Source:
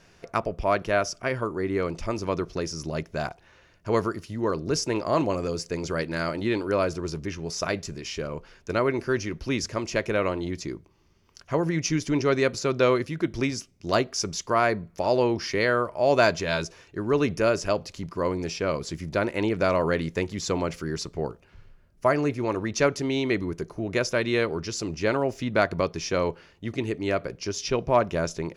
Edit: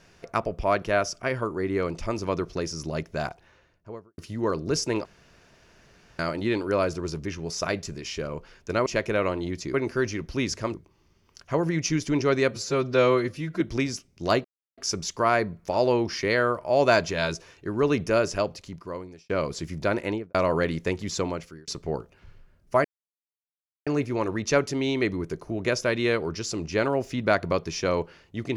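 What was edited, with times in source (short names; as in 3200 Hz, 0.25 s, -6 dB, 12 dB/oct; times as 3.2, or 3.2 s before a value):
3.3–4.18 studio fade out
5.05–6.19 room tone
9.86–10.74 move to 8.86
12.51–13.24 stretch 1.5×
14.08 insert silence 0.33 s
17.63–18.6 fade out
19.32–19.65 studio fade out
20.46–20.98 fade out
22.15 insert silence 1.02 s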